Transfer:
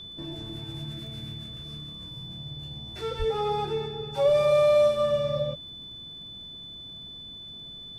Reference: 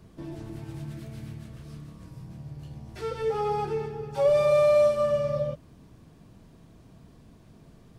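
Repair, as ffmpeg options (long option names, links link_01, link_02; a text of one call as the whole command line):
ffmpeg -i in.wav -filter_complex "[0:a]adeclick=threshold=4,bandreject=frequency=3500:width=30,asplit=3[link_01][link_02][link_03];[link_01]afade=type=out:start_time=3.18:duration=0.02[link_04];[link_02]highpass=frequency=140:width=0.5412,highpass=frequency=140:width=1.3066,afade=type=in:start_time=3.18:duration=0.02,afade=type=out:start_time=3.3:duration=0.02[link_05];[link_03]afade=type=in:start_time=3.3:duration=0.02[link_06];[link_04][link_05][link_06]amix=inputs=3:normalize=0" out.wav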